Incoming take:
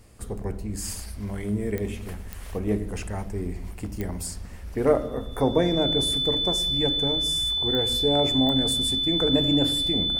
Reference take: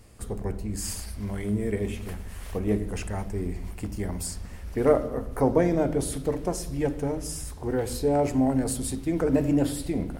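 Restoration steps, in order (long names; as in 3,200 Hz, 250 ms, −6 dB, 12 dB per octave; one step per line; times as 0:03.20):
click removal
notch filter 3,500 Hz, Q 30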